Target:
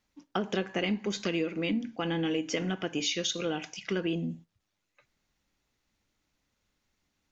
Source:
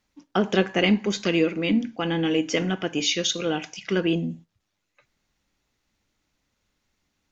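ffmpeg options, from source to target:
ffmpeg -i in.wav -af "acompressor=threshold=-24dB:ratio=3,volume=-3.5dB" out.wav

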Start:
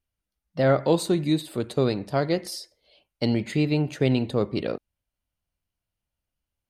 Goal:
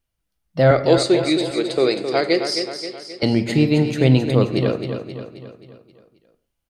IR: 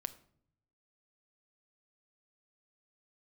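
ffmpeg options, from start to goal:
-filter_complex "[0:a]asettb=1/sr,asplit=3[link_01][link_02][link_03];[link_01]atrim=end=0.714[link_04];[link_02]atrim=start=0.71:end=3.23,asetpts=PTS-STARTPTS,afade=type=in:duration=0.004:curve=qsin,afade=type=out:start_time=2.516:duration=0.004:curve=qsin,highpass=380,equalizer=frequency=380:width_type=q:width=4:gain=6,equalizer=frequency=960:width_type=q:width=4:gain=-6,equalizer=frequency=2200:width_type=q:width=4:gain=8,equalizer=frequency=4800:width_type=q:width=4:gain=8,lowpass=frequency=8800:width=0.5412,lowpass=frequency=8800:width=1.3066[link_05];[link_03]atrim=start=3.226[link_06];[link_04][link_05]acrossfade=duration=0.004:curve1=hsin:curve2=qsin[link_07];[link_07][link_06]acrossfade=duration=0.004:curve1=qsin:curve2=hsin,aecho=1:1:265|530|795|1060|1325|1590:0.398|0.203|0.104|0.0528|0.0269|0.0137[link_08];[1:a]atrim=start_sample=2205,afade=type=out:start_time=0.22:duration=0.01,atrim=end_sample=10143[link_09];[link_08][link_09]afir=irnorm=-1:irlink=0,volume=7.5dB"

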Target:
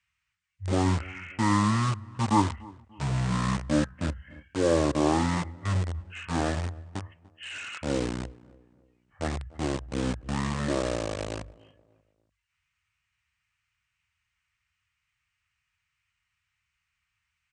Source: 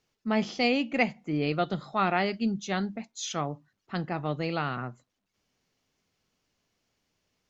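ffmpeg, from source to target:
ffmpeg -i in.wav -filter_complex "[0:a]lowshelf=frequency=200:gain=-6,acrossover=split=270|3100[link_01][link_02][link_03];[link_02]acrusher=bits=5:mix=0:aa=0.000001[link_04];[link_03]asoftclip=type=hard:threshold=-39dB[link_05];[link_01][link_04][link_05]amix=inputs=3:normalize=0,highpass=120,asplit=2[link_06][link_07];[link_07]adelay=125,lowpass=frequency=3200:poles=1,volume=-22dB,asplit=2[link_08][link_09];[link_09]adelay=125,lowpass=frequency=3200:poles=1,volume=0.42,asplit=2[link_10][link_11];[link_11]adelay=125,lowpass=frequency=3200:poles=1,volume=0.42[link_12];[link_08][link_10][link_12]amix=inputs=3:normalize=0[link_13];[link_06][link_13]amix=inputs=2:normalize=0,asetrate=18846,aresample=44100,volume=2.5dB" out.wav

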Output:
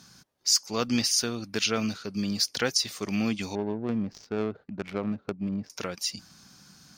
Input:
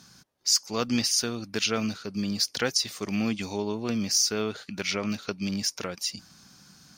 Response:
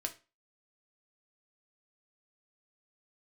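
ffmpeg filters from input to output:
-filter_complex "[0:a]asettb=1/sr,asplit=3[link_01][link_02][link_03];[link_01]atrim=end=3.554[link_04];[link_02]atrim=start=3.55:end=5.7,asetpts=PTS-STARTPTS,afade=type=in:duration=0.004:curve=qsin,afade=type=out:start_time=2.146:duration=0.004:curve=qsin,adynamicsmooth=sensitivity=1:basefreq=520[link_05];[link_03]atrim=start=5.696[link_06];[link_04][link_05]acrossfade=duration=0.004:curve1=hsin:curve2=qsin[link_07];[link_07][link_06]acrossfade=duration=0.004:curve1=qsin:curve2=hsin"

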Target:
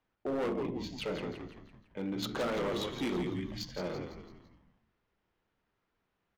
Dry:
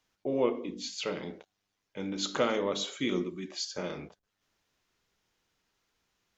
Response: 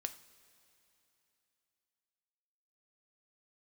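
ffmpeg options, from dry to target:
-filter_complex "[0:a]adynamicsmooth=sensitivity=3.5:basefreq=2200,asplit=6[link_01][link_02][link_03][link_04][link_05][link_06];[link_02]adelay=168,afreqshift=-74,volume=-8dB[link_07];[link_03]adelay=336,afreqshift=-148,volume=-14.6dB[link_08];[link_04]adelay=504,afreqshift=-222,volume=-21.1dB[link_09];[link_05]adelay=672,afreqshift=-296,volume=-27.7dB[link_10];[link_06]adelay=840,afreqshift=-370,volume=-34.2dB[link_11];[link_01][link_07][link_08][link_09][link_10][link_11]amix=inputs=6:normalize=0,asoftclip=type=hard:threshold=-29.5dB"

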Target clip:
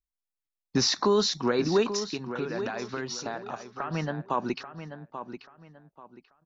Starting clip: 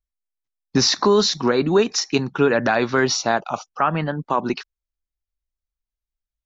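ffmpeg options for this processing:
ffmpeg -i in.wav -filter_complex "[0:a]asettb=1/sr,asplit=3[link_01][link_02][link_03];[link_01]atrim=end=1.964[link_04];[link_02]atrim=start=1.96:end=3.91,asetpts=PTS-STARTPTS,afade=type=in:duration=0.004:curve=qsin,afade=type=out:start_time=1.946:duration=0.004:curve=qsin,acompressor=threshold=-24dB:ratio=6[link_05];[link_03]atrim=start=3.906[link_06];[link_04][link_05]acrossfade=duration=0.004:curve1=hsin:curve2=qsin[link_07];[link_07][link_06]acrossfade=duration=0.004:curve1=qsin:curve2=hsin,asplit=2[link_08][link_09];[link_09]adelay=836,lowpass=frequency=3800:poles=1,volume=-10dB,asplit=2[link_10][link_11];[link_11]adelay=836,lowpass=frequency=3800:poles=1,volume=0.28,asplit=2[link_12][link_13];[link_13]adelay=836,lowpass=frequency=3800:poles=1,volume=0.28[link_14];[link_08][link_10][link_12][link_14]amix=inputs=4:normalize=0,volume=-7dB" out.wav

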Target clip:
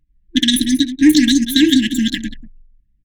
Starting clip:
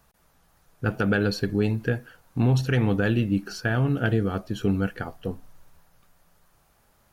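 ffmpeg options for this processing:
ffmpeg -i in.wav -filter_complex "[0:a]asetrate=103194,aresample=44100,afftfilt=real='re*(1-between(b*sr/4096,340,1600))':imag='im*(1-between(b*sr/4096,340,1600))':win_size=4096:overlap=0.75,acontrast=39,asplit=2[link_01][link_02];[link_02]aecho=0:1:64|185|193:0.106|0.15|0.141[link_03];[link_01][link_03]amix=inputs=2:normalize=0,anlmdn=0.398,volume=8dB" out.wav

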